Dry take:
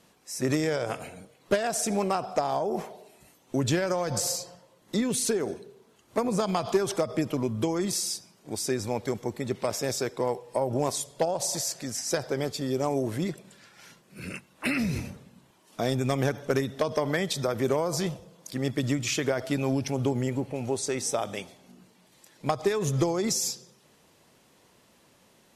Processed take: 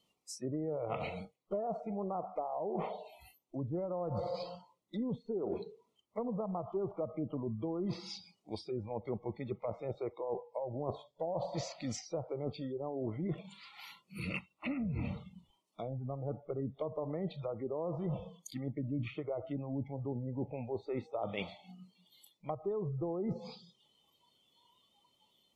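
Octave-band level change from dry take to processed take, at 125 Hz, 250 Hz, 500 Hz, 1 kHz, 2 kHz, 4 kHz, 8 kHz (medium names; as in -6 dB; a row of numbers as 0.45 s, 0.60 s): -8.5 dB, -9.5 dB, -9.5 dB, -10.5 dB, -15.0 dB, -16.5 dB, -24.0 dB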